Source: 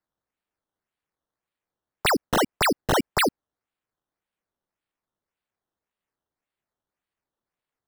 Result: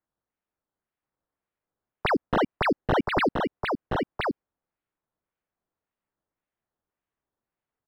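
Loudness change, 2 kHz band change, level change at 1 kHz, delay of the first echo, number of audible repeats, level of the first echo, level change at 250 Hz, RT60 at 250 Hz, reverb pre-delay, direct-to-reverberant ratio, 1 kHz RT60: -3.5 dB, -2.0 dB, -0.5 dB, 1025 ms, 1, -4.0 dB, +1.0 dB, no reverb, no reverb, no reverb, no reverb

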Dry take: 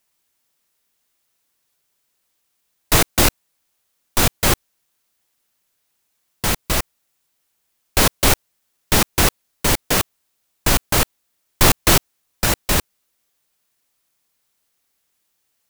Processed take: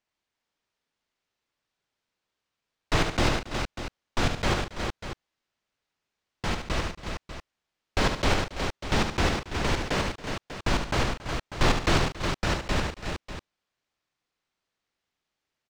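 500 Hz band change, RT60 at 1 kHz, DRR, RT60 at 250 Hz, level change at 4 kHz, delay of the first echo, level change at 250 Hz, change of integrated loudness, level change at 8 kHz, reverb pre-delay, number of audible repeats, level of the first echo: -5.5 dB, no reverb, no reverb, no reverb, -9.0 dB, 72 ms, -5.5 dB, -10.5 dB, -18.0 dB, no reverb, 5, -7.0 dB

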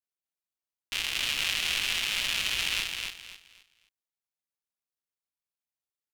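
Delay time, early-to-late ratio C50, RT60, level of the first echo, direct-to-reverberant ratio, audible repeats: 262 ms, no reverb, no reverb, -4.5 dB, no reverb, 3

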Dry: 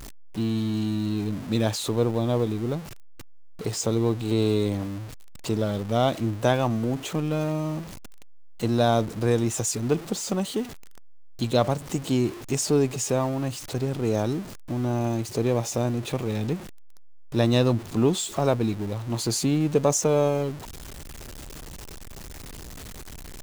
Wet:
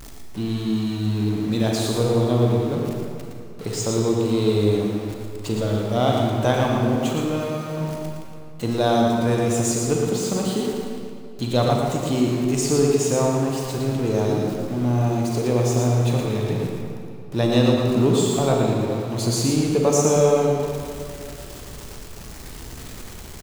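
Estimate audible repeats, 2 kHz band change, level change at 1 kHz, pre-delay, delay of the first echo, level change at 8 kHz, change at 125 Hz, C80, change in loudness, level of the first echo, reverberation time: 1, +3.5 dB, +4.5 dB, 30 ms, 115 ms, +3.0 dB, +4.5 dB, 0.0 dB, +4.0 dB, -5.5 dB, 2.3 s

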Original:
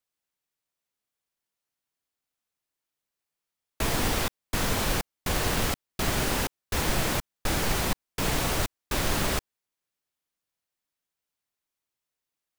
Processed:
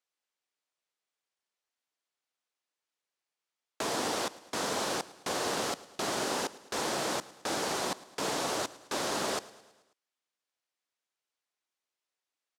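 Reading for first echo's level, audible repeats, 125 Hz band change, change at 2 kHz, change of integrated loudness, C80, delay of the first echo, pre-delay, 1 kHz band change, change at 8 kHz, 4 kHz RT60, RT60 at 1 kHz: -19.5 dB, 4, -17.0 dB, -6.0 dB, -5.0 dB, no reverb, 108 ms, no reverb, -1.5 dB, -4.0 dB, no reverb, no reverb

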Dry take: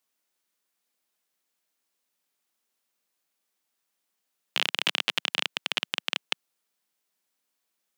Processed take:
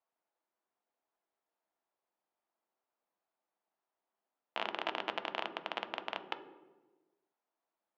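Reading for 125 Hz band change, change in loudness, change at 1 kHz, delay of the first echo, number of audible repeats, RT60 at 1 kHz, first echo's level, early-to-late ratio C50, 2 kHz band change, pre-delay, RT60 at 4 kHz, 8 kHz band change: -9.5 dB, -11.5 dB, 0.0 dB, no echo, no echo, 1.1 s, no echo, 10.5 dB, -11.0 dB, 3 ms, 0.75 s, under -25 dB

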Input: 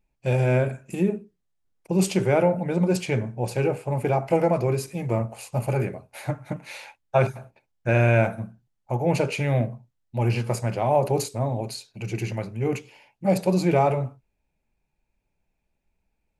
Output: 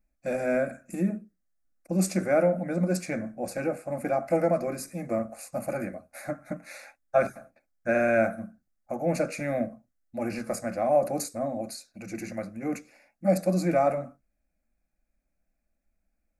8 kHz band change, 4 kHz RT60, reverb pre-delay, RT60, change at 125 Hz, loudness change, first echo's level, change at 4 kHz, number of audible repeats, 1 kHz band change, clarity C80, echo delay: -1.5 dB, no reverb, no reverb, no reverb, -11.5 dB, -4.0 dB, no echo, -8.0 dB, no echo, -4.0 dB, no reverb, no echo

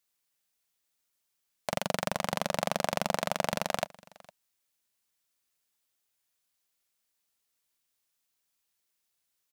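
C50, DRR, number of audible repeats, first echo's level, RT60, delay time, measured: no reverb, no reverb, 1, -23.0 dB, no reverb, 458 ms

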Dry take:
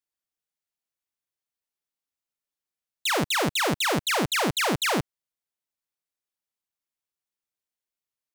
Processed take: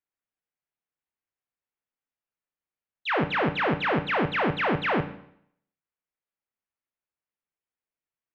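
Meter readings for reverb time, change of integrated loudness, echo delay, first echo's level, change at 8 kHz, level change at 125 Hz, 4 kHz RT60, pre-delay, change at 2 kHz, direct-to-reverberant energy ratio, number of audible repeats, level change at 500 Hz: 0.70 s, -1.5 dB, no echo, no echo, under -30 dB, +1.0 dB, 0.65 s, 11 ms, 0.0 dB, 8.0 dB, no echo, +1.0 dB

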